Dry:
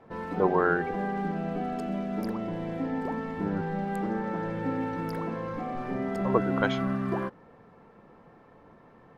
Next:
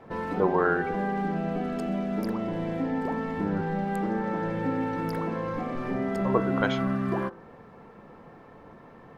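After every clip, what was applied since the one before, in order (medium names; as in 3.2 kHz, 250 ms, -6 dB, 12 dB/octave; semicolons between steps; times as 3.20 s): de-hum 57.36 Hz, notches 28; in parallel at +1.5 dB: compression, threshold -36 dBFS, peak gain reduction 16.5 dB; on the sum: trim -1 dB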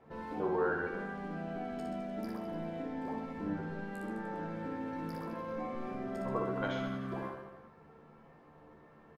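feedback comb 75 Hz, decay 0.19 s, harmonics all, mix 90%; on a send: reverse bouncing-ball echo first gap 60 ms, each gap 1.15×, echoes 5; on the sum: trim -5.5 dB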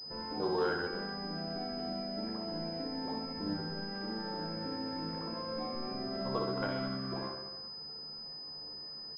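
class-D stage that switches slowly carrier 5 kHz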